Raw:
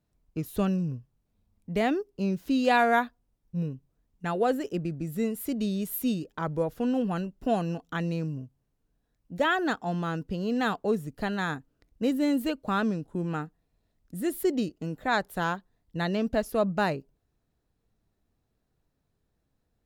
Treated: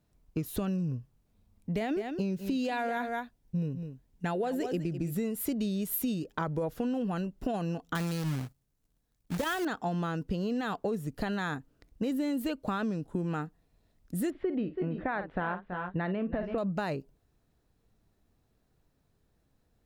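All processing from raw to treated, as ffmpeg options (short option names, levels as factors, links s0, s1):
-filter_complex "[0:a]asettb=1/sr,asplit=3[s0][s1][s2];[s0]atrim=end=1.764[s3];[s1]atrim=start=1.76:end=5.14,asetpts=PTS-STARTPTS,afade=t=in:d=0.004:c=qsin,afade=t=out:st=3.376:d=0.004:c=qsin,equalizer=f=1200:w=5.3:g=-6.5,aecho=1:1:204:0.224,atrim=end_sample=149058[s4];[s2]atrim=start=5.136[s5];[s3][s4]acrossfade=d=0.004:c1=hsin:c2=qsin[s6];[s6][s5]acrossfade=d=0.004:c1=qsin:c2=hsin,asettb=1/sr,asplit=3[s7][s8][s9];[s7]atrim=end=7.954[s10];[s8]atrim=start=7.95:end=9.65,asetpts=PTS-STARTPTS,afade=t=in:d=0.004:c=qsin,afade=t=out:st=1.696:d=0.004:c=qsin,bass=f=250:g=4,treble=f=4000:g=8,acrusher=bits=2:mode=log:mix=0:aa=0.000001,agate=range=0.316:threshold=0.00158:ratio=16:release=100:detection=peak[s11];[s9]atrim=start=9.646[s12];[s10][s11]acrossfade=d=0.004:c1=hsin:c2=qsin[s13];[s13][s12]acrossfade=d=0.004:c1=qsin:c2=hsin,asettb=1/sr,asplit=3[s14][s15][s16];[s14]atrim=end=14.304[s17];[s15]atrim=start=14.3:end=16.58,asetpts=PTS-STARTPTS,afade=t=in:d=0.004:c=qsin,afade=t=out:st=2.276:d=0.004:c=qsin,lowpass=f=2500:w=0.5412,lowpass=f=2500:w=1.3066,aecho=1:1:50|329|351:0.188|0.211|0.141,atrim=end_sample=100548[s18];[s16]atrim=start=16.576[s19];[s17][s18]acrossfade=d=0.004:c1=hsin:c2=qsin[s20];[s20][s19]acrossfade=d=0.004:c1=qsin:c2=hsin,alimiter=limit=0.0891:level=0:latency=1:release=30,acompressor=threshold=0.0224:ratio=6,volume=1.68"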